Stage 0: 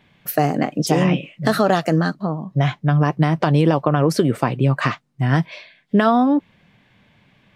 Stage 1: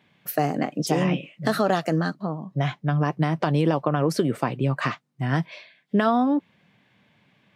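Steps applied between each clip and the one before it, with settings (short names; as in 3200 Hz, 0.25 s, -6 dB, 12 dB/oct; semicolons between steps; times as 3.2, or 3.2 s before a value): HPF 120 Hz; gain -5 dB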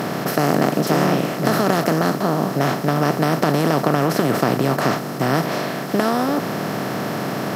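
per-bin compression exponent 0.2; gain -3.5 dB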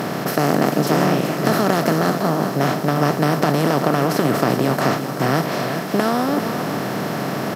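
echo 0.387 s -9.5 dB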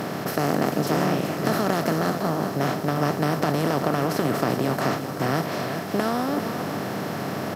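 buzz 100 Hz, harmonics 8, -36 dBFS -1 dB/oct; gain -5.5 dB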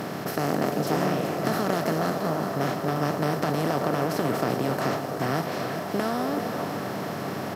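delay with a stepping band-pass 0.261 s, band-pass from 540 Hz, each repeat 0.7 oct, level -4 dB; gain -3 dB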